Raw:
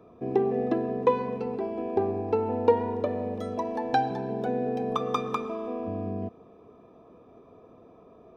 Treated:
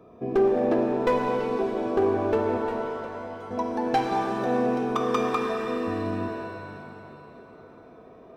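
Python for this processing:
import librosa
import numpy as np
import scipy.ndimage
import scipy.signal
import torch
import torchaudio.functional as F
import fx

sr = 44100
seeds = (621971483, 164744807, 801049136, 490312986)

y = np.clip(10.0 ** (19.5 / 20.0) * x, -1.0, 1.0) / 10.0 ** (19.5 / 20.0)
y = fx.comb_fb(y, sr, f0_hz=450.0, decay_s=0.57, harmonics='all', damping=0.0, mix_pct=80, at=(2.57, 3.51))
y = fx.rev_shimmer(y, sr, seeds[0], rt60_s=2.6, semitones=7, shimmer_db=-8, drr_db=1.5)
y = y * librosa.db_to_amplitude(1.5)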